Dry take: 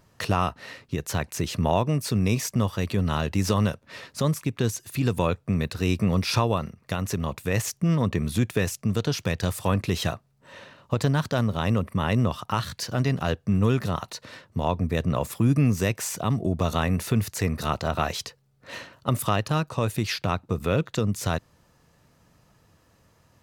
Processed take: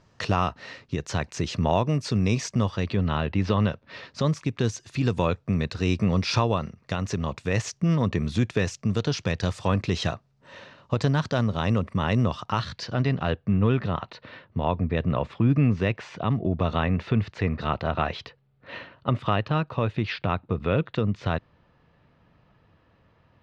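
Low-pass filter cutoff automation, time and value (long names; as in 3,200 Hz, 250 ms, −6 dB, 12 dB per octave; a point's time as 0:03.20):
low-pass filter 24 dB per octave
0:02.60 6,400 Hz
0:03.26 3,400 Hz
0:04.46 6,300 Hz
0:12.39 6,300 Hz
0:13.42 3,500 Hz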